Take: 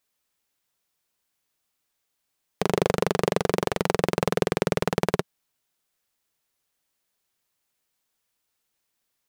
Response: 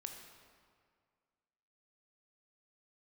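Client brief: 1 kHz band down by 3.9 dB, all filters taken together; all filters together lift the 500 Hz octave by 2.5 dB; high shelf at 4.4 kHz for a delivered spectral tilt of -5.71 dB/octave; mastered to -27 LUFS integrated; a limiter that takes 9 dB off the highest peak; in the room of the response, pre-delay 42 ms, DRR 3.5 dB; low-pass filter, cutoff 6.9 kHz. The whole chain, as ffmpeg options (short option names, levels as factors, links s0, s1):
-filter_complex "[0:a]lowpass=6900,equalizer=f=500:t=o:g=4.5,equalizer=f=1000:t=o:g=-7,highshelf=f=4400:g=-6,alimiter=limit=0.178:level=0:latency=1,asplit=2[s0][s1];[1:a]atrim=start_sample=2205,adelay=42[s2];[s1][s2]afir=irnorm=-1:irlink=0,volume=1[s3];[s0][s3]amix=inputs=2:normalize=0,volume=1.41"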